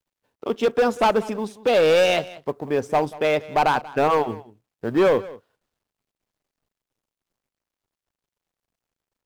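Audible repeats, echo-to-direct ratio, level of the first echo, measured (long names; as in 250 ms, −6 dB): 1, −19.0 dB, −19.0 dB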